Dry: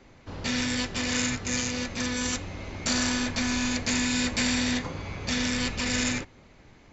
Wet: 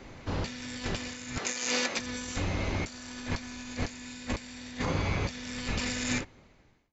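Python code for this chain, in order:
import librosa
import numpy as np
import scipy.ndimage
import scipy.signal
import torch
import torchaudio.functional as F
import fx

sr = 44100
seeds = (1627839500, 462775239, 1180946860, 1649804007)

y = fx.fade_out_tail(x, sr, length_s=1.62)
y = fx.highpass(y, sr, hz=400.0, slope=12, at=(1.38, 1.99))
y = fx.over_compress(y, sr, threshold_db=-34.0, ratio=-0.5)
y = y * 10.0 ** (1.0 / 20.0)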